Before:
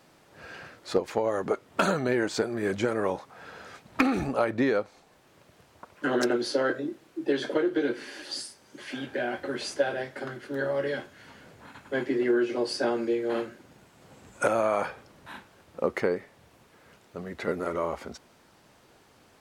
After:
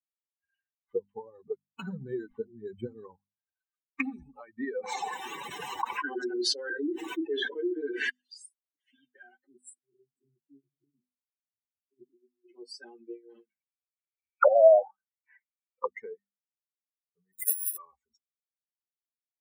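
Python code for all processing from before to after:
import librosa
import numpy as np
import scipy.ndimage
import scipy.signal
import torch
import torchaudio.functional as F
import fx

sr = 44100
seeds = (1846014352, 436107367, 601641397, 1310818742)

y = fx.chain(x, sr, fx.highpass(hz=49.0, slope=12),
    fx.low_shelf(hz=200.0, db=9.0),
    fx.resample_linear(factor=8), at=(0.79, 3.56))
y = fx.chain(y, sr, fx.highpass(hz=220.0, slope=12),
    fx.high_shelf(hz=3100.0, db=-9.5),
    fx.env_flatten(amount_pct=100), at=(4.75, 8.1))
y = fx.chain(y, sr, fx.over_compress(threshold_db=-30.0, ratio=-0.5),
    fx.brickwall_bandstop(low_hz=410.0, high_hz=7400.0), at=(9.47, 12.49))
y = fx.chain(y, sr, fx.notch(hz=290.0, q=5.7),
    fx.envelope_lowpass(base_hz=640.0, top_hz=2500.0, q=6.1, full_db=-22.5, direction='down'), at=(13.49, 15.86))
y = fx.chain(y, sr, fx.highpass(hz=150.0, slope=24),
    fx.resample_bad(factor=4, down='filtered', up='zero_stuff'), at=(17.33, 17.77))
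y = fx.bin_expand(y, sr, power=3.0)
y = fx.low_shelf(y, sr, hz=200.0, db=-11.0)
y = fx.hum_notches(y, sr, base_hz=50, count=5)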